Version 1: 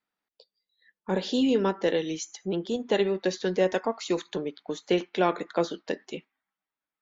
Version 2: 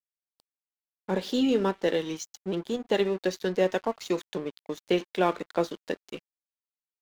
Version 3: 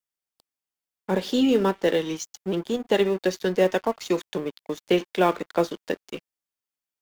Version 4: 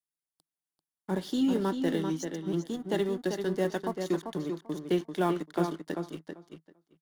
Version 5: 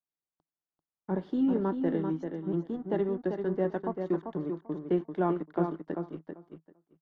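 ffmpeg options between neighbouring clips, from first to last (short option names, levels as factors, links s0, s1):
-af "aeval=exprs='sgn(val(0))*max(abs(val(0))-0.00708,0)':c=same"
-filter_complex "[0:a]bandreject=f=4000:w=19,acrossover=split=480[s0][s1];[s1]acrusher=bits=6:mode=log:mix=0:aa=0.000001[s2];[s0][s2]amix=inputs=2:normalize=0,volume=1.58"
-filter_complex "[0:a]equalizer=f=160:t=o:w=0.33:g=10,equalizer=f=315:t=o:w=0.33:g=7,equalizer=f=500:t=o:w=0.33:g=-8,equalizer=f=2500:t=o:w=0.33:g=-10,equalizer=f=10000:t=o:w=0.33:g=8,asplit=2[s0][s1];[s1]adelay=391,lowpass=f=4300:p=1,volume=0.501,asplit=2[s2][s3];[s3]adelay=391,lowpass=f=4300:p=1,volume=0.15,asplit=2[s4][s5];[s5]adelay=391,lowpass=f=4300:p=1,volume=0.15[s6];[s2][s4][s6]amix=inputs=3:normalize=0[s7];[s0][s7]amix=inputs=2:normalize=0,volume=0.398"
-af "lowpass=1300"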